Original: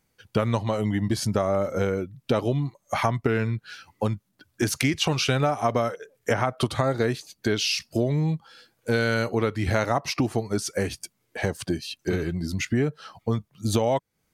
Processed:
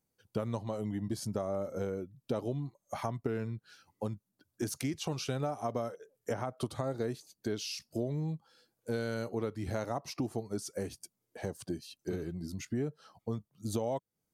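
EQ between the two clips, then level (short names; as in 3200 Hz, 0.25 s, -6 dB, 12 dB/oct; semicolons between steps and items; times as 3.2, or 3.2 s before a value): low shelf 94 Hz -8.5 dB; bell 2200 Hz -10.5 dB 2.1 oct; -8.5 dB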